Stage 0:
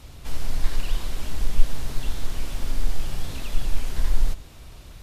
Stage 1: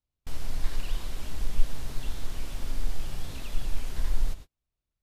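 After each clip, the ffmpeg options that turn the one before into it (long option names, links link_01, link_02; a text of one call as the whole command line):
ffmpeg -i in.wav -af "agate=range=-39dB:threshold=-30dB:ratio=16:detection=peak,volume=-5.5dB" out.wav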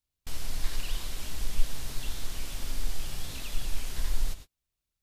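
ffmpeg -i in.wav -af "highshelf=frequency=2000:gain=9,volume=-2.5dB" out.wav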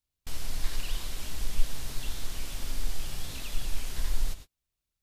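ffmpeg -i in.wav -af anull out.wav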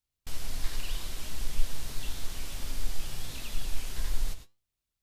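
ffmpeg -i in.wav -af "flanger=delay=7.9:depth=4.5:regen=83:speed=0.62:shape=sinusoidal,volume=3.5dB" out.wav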